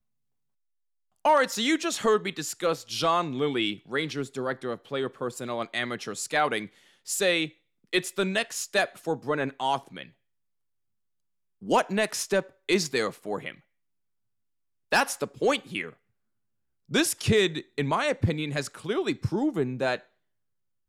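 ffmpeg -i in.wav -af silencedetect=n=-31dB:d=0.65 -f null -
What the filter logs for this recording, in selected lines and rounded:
silence_start: 0.00
silence_end: 1.25 | silence_duration: 1.25
silence_start: 10.02
silence_end: 11.68 | silence_duration: 1.66
silence_start: 13.50
silence_end: 14.92 | silence_duration: 1.42
silence_start: 15.89
silence_end: 16.93 | silence_duration: 1.04
silence_start: 19.96
silence_end: 20.88 | silence_duration: 0.92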